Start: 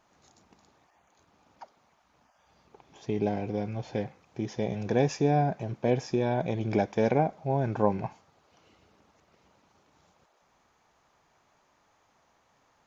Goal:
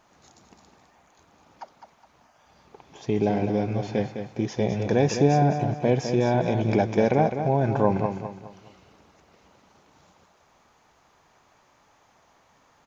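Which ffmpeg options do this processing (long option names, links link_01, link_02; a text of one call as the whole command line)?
ffmpeg -i in.wav -filter_complex "[0:a]asplit=2[link_01][link_02];[link_02]alimiter=limit=-20.5dB:level=0:latency=1,volume=0dB[link_03];[link_01][link_03]amix=inputs=2:normalize=0,aecho=1:1:207|414|621|828:0.398|0.143|0.0516|0.0186" out.wav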